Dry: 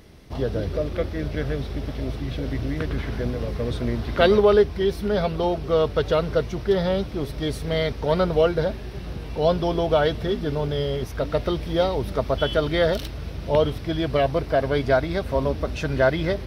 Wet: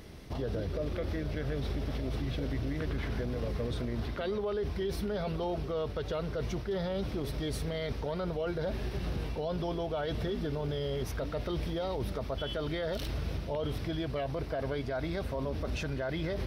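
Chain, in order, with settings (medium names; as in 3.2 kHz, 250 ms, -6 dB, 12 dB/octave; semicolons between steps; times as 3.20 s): reverse; compression 6:1, threshold -25 dBFS, peak gain reduction 12.5 dB; reverse; peak limiter -26 dBFS, peak gain reduction 11 dB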